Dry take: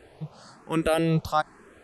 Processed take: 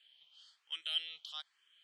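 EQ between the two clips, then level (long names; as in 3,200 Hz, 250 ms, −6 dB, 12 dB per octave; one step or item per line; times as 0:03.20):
four-pole ladder band-pass 3,200 Hz, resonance 90%
parametric band 2,700 Hz −5.5 dB 0.22 octaves
+1.0 dB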